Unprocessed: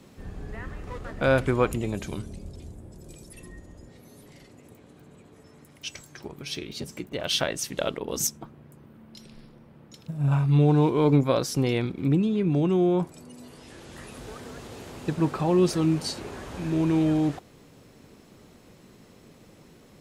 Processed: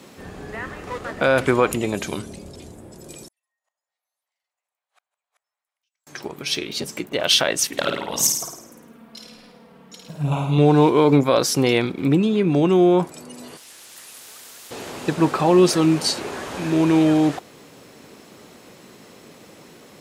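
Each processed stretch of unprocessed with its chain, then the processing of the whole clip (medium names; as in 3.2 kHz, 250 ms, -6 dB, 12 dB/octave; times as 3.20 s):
3.28–6.07 s: steep high-pass 680 Hz + compression 3:1, threshold -54 dBFS + inverted gate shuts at -52 dBFS, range -38 dB
7.67–10.58 s: touch-sensitive flanger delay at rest 5 ms, full sweep at -21 dBFS + flutter echo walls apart 9.1 m, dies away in 0.71 s
13.57–14.71 s: pre-emphasis filter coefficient 0.9 + spectrum-flattening compressor 2:1
whole clip: high-pass 370 Hz 6 dB/octave; loudness maximiser +14.5 dB; trim -4 dB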